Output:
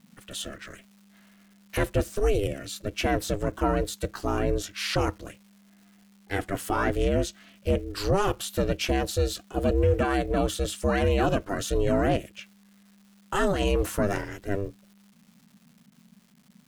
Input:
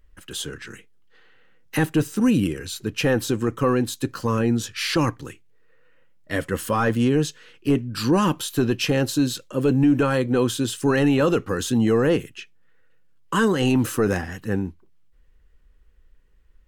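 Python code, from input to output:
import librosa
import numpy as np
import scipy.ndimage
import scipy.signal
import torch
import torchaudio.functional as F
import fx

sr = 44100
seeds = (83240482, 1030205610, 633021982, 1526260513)

y = x * np.sin(2.0 * np.pi * 200.0 * np.arange(len(x)) / sr)
y = fx.dmg_crackle(y, sr, seeds[0], per_s=440.0, level_db=-47.0)
y = y * librosa.db_to_amplitude(-1.5)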